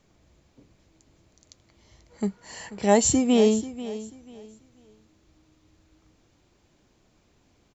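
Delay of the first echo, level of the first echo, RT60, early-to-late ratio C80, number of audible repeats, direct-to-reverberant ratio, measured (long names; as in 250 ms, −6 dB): 488 ms, −15.0 dB, no reverb audible, no reverb audible, 2, no reverb audible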